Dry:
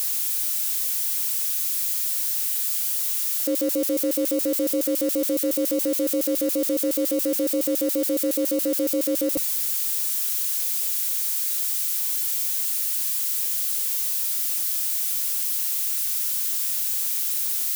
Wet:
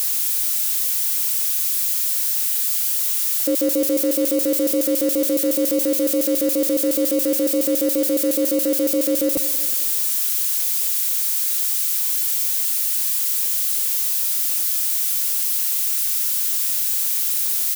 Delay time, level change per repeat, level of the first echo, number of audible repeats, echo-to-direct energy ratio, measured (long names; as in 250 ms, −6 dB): 184 ms, −6.5 dB, −15.0 dB, 4, −14.0 dB